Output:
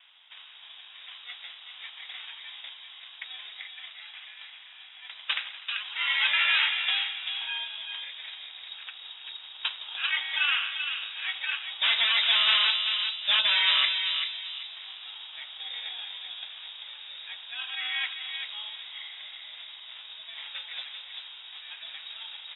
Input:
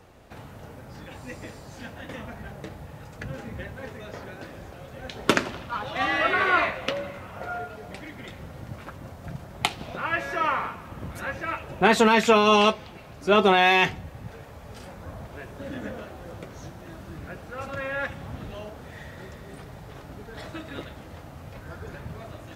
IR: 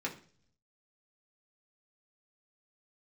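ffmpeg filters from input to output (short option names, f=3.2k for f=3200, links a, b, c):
-filter_complex "[0:a]asetnsamples=n=441:p=0,asendcmd='3.6 highpass f 1300;6.06 highpass f 280',highpass=f=550:p=1,acrusher=samples=12:mix=1:aa=0.000001,aeval=exprs='0.133*(abs(mod(val(0)/0.133+3,4)-2)-1)':c=same,asplit=2[a][b];[b]adelay=389,lowpass=f=1.5k:p=1,volume=-4dB,asplit=2[c][d];[d]adelay=389,lowpass=f=1.5k:p=1,volume=0.39,asplit=2[e][f];[f]adelay=389,lowpass=f=1.5k:p=1,volume=0.39,asplit=2[g][h];[h]adelay=389,lowpass=f=1.5k:p=1,volume=0.39,asplit=2[i][j];[j]adelay=389,lowpass=f=1.5k:p=1,volume=0.39[k];[a][c][e][g][i][k]amix=inputs=6:normalize=0,lowpass=f=3.3k:t=q:w=0.5098,lowpass=f=3.3k:t=q:w=0.6013,lowpass=f=3.3k:t=q:w=0.9,lowpass=f=3.3k:t=q:w=2.563,afreqshift=-3900"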